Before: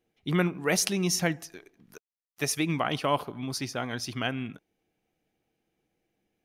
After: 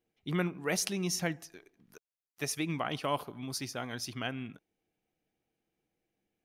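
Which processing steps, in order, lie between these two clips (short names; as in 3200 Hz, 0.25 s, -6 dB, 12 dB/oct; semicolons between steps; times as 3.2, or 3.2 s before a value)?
3.03–4.1 high shelf 6600 Hz +7 dB; gain -6 dB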